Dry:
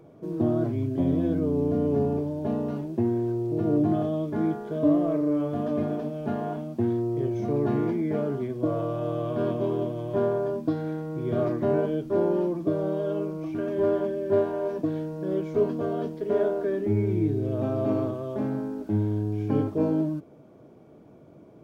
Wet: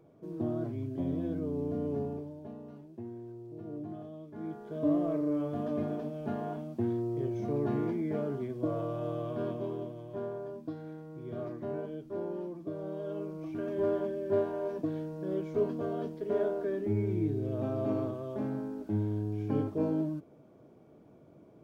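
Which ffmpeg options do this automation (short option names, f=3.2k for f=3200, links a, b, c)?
-af "volume=10dB,afade=t=out:st=1.9:d=0.63:silence=0.354813,afade=t=in:st=4.32:d=0.65:silence=0.251189,afade=t=out:st=9.07:d=1.01:silence=0.446684,afade=t=in:st=12.69:d=1:silence=0.446684"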